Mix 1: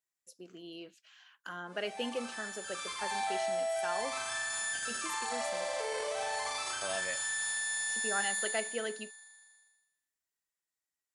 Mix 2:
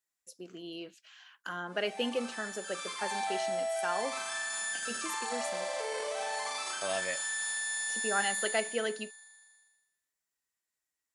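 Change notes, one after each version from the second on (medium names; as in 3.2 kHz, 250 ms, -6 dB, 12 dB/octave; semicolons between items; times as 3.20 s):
speech +4.0 dB; background: add brick-wall FIR high-pass 150 Hz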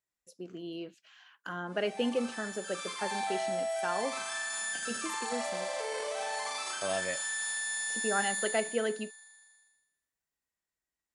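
speech: add tilt EQ -2 dB/octave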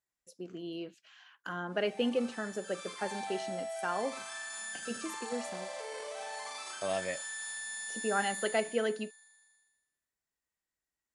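background -6.0 dB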